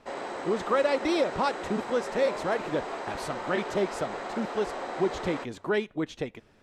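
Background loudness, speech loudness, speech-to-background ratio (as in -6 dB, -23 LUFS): -36.0 LUFS, -30.5 LUFS, 5.5 dB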